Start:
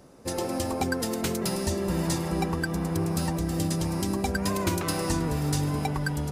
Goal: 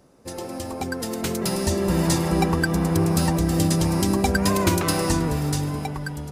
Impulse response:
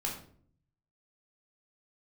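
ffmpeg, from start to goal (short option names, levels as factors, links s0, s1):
-af "dynaudnorm=f=310:g=9:m=3.76,volume=0.668"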